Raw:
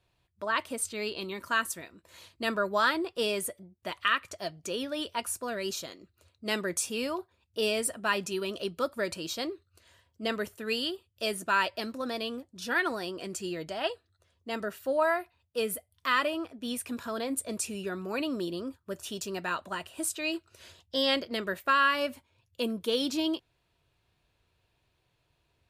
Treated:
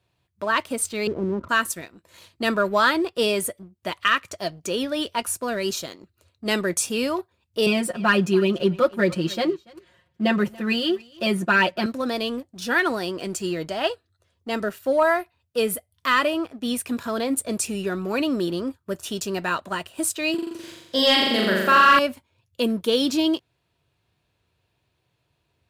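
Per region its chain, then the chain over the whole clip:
1.07–1.49 elliptic low-pass 1400 Hz + tilt -3 dB/oct
7.66–11.86 tone controls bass +5 dB, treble -11 dB + comb 5.6 ms, depth 90% + echo 0.285 s -21 dB
20.34–21.99 HPF 120 Hz 24 dB/oct + flutter echo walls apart 7.2 m, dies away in 1.2 s
whole clip: HPF 84 Hz; low shelf 270 Hz +4.5 dB; sample leveller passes 1; gain +3 dB

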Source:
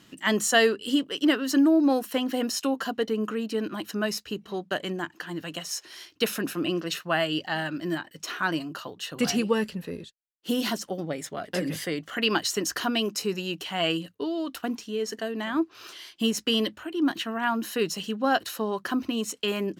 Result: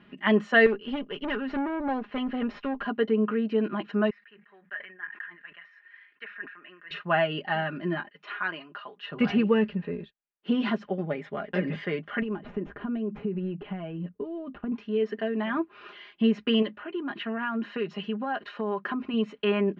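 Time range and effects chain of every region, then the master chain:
0.66–2.88 median filter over 5 samples + tube stage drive 24 dB, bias 0.45
4.1–6.91 band-pass 1800 Hz, Q 6 + sustainer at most 110 dB/s
8.09–9.04 HPF 1100 Hz 6 dB/oct + air absorption 65 m
12.22–14.72 median filter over 9 samples + compressor 5:1, threshold -35 dBFS + tilt shelf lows +8.5 dB, about 640 Hz
16.62–19.14 compressor, threshold -26 dBFS + low shelf 100 Hz -11 dB
whole clip: LPF 2600 Hz 24 dB/oct; comb 4.9 ms, depth 62%

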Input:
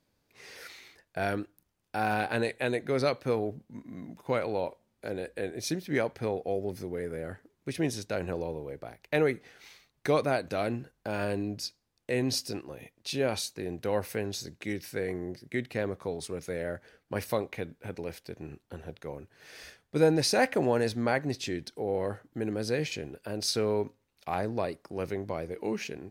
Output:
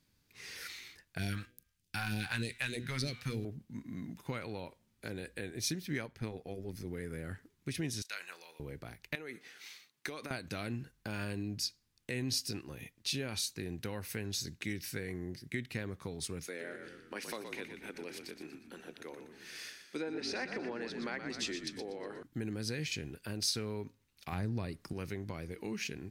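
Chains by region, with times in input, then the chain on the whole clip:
1.18–3.45 de-hum 122.8 Hz, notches 32 + sample leveller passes 1 + phaser stages 2, 3.3 Hz, lowest notch 320–1200 Hz
6.06–6.87 AM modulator 110 Hz, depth 40% + mismatched tape noise reduction decoder only
8.02–8.6 HPF 1400 Hz + doubler 29 ms -12 dB
9.15–10.31 HPF 290 Hz + compressor 10:1, threshold -32 dBFS
16.47–22.23 HPF 270 Hz 24 dB/oct + treble ducked by the level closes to 2700 Hz, closed at -22 dBFS + frequency-shifting echo 0.12 s, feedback 47%, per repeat -42 Hz, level -8.5 dB
24.32–24.93 low shelf 250 Hz +10 dB + mismatched tape noise reduction encoder only
whole clip: compressor 2.5:1, threshold -35 dBFS; bell 610 Hz -13.5 dB 1.7 oct; gain +3.5 dB

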